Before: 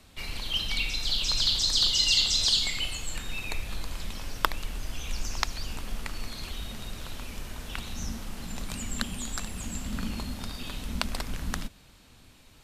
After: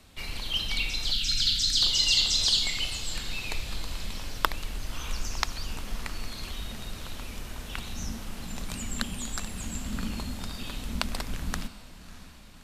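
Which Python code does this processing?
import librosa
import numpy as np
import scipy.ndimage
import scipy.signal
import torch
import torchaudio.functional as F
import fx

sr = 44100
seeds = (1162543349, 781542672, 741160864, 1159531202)

y = fx.spec_erase(x, sr, start_s=1.12, length_s=0.7, low_hz=320.0, high_hz=1300.0)
y = fx.echo_diffused(y, sr, ms=617, feedback_pct=54, wet_db=-16.0)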